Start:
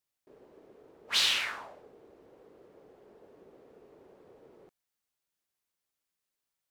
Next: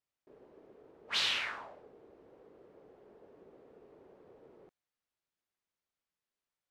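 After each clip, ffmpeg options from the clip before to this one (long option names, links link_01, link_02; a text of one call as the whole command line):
ffmpeg -i in.wav -af "aemphasis=mode=reproduction:type=50fm,volume=-2dB" out.wav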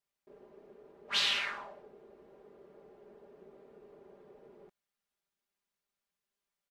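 ffmpeg -i in.wav -af "aecho=1:1:5:0.65" out.wav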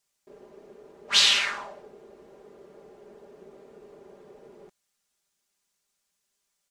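ffmpeg -i in.wav -af "equalizer=frequency=7200:width=0.77:gain=10.5,volume=6.5dB" out.wav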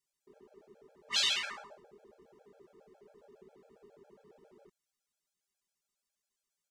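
ffmpeg -i in.wav -af "afftfilt=real='re*gt(sin(2*PI*7.3*pts/sr)*(1-2*mod(floor(b*sr/1024/440),2)),0)':imag='im*gt(sin(2*PI*7.3*pts/sr)*(1-2*mod(floor(b*sr/1024/440),2)),0)':win_size=1024:overlap=0.75,volume=-7dB" out.wav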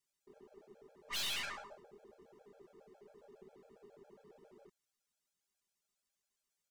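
ffmpeg -i in.wav -af "aeval=exprs='(tanh(79.4*val(0)+0.5)-tanh(0.5))/79.4':channel_layout=same,volume=1.5dB" out.wav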